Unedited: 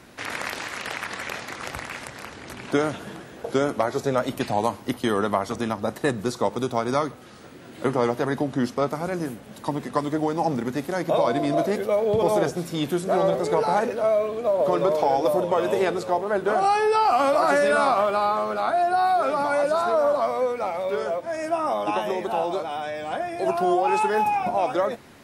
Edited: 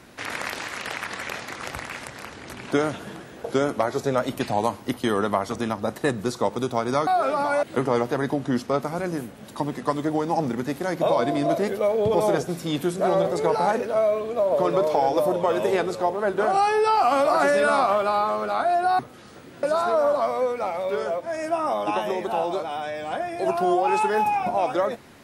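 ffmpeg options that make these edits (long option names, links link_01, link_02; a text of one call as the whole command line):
ffmpeg -i in.wav -filter_complex "[0:a]asplit=5[link_01][link_02][link_03][link_04][link_05];[link_01]atrim=end=7.072[link_06];[link_02]atrim=start=19.068:end=19.632[link_07];[link_03]atrim=start=7.708:end=19.072[link_08];[link_04]atrim=start=7.068:end=7.712[link_09];[link_05]atrim=start=19.628[link_10];[link_06][link_07]acrossfade=duration=0.004:curve1=hsin:curve2=hsin[link_11];[link_11][link_08]acrossfade=duration=0.004:curve1=hsin:curve2=hsin[link_12];[link_12][link_09]acrossfade=duration=0.004:curve1=hsin:curve2=hsin[link_13];[link_13][link_10]acrossfade=duration=0.004:curve1=hsin:curve2=hsin" out.wav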